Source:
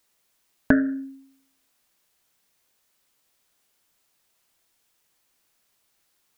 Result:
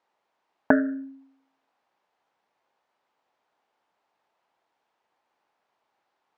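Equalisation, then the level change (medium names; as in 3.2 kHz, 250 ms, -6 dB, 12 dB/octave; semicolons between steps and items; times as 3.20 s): band-pass filter 720 Hz, Q 0.7; distance through air 77 m; peaking EQ 850 Hz +7 dB 0.54 oct; +3.0 dB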